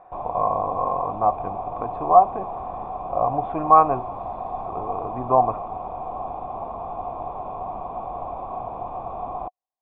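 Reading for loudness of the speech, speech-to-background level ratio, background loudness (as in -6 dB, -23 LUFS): -21.5 LUFS, 10.5 dB, -32.0 LUFS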